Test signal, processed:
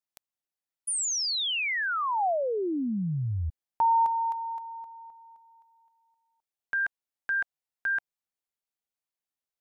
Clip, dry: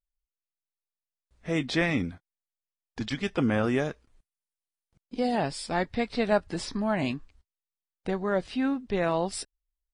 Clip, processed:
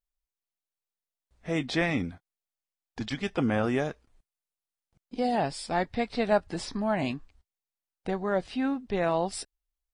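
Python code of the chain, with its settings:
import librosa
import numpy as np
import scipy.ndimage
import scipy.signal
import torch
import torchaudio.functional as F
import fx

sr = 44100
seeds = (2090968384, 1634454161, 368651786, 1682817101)

y = fx.peak_eq(x, sr, hz=750.0, db=4.0, octaves=0.5)
y = F.gain(torch.from_numpy(y), -1.5).numpy()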